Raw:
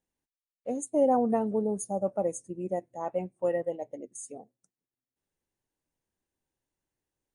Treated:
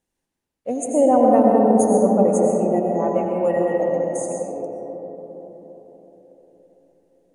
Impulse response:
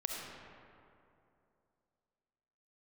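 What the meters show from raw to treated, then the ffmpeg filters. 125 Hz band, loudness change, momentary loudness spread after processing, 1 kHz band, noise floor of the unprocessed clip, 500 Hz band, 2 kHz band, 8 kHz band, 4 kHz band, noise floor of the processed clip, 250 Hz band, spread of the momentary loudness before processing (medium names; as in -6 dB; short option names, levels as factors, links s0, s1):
+13.0 dB, +11.5 dB, 19 LU, +12.5 dB, under -85 dBFS, +12.0 dB, +11.5 dB, +9.0 dB, no reading, -81 dBFS, +13.0 dB, 17 LU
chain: -filter_complex "[1:a]atrim=start_sample=2205,asetrate=23814,aresample=44100[s0];[0:a][s0]afir=irnorm=-1:irlink=0,volume=1.78"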